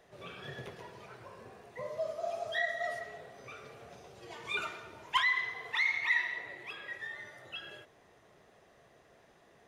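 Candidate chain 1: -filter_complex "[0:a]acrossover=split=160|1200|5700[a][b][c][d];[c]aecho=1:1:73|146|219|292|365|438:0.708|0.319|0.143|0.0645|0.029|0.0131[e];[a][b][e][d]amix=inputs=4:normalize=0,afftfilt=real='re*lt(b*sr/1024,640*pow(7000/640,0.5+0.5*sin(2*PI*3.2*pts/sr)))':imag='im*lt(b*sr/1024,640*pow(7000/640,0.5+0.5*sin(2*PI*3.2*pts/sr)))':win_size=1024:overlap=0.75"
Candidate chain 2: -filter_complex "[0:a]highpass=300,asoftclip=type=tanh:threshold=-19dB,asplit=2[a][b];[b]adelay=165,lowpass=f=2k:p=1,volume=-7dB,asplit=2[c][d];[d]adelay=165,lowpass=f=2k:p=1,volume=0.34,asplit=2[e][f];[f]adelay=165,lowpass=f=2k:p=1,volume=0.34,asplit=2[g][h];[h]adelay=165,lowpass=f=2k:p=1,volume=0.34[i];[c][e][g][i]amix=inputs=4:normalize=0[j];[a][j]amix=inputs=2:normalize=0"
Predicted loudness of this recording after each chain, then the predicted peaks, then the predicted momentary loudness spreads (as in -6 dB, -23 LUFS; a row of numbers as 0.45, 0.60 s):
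-37.0, -34.5 LUFS; -18.5, -19.5 dBFS; 20, 21 LU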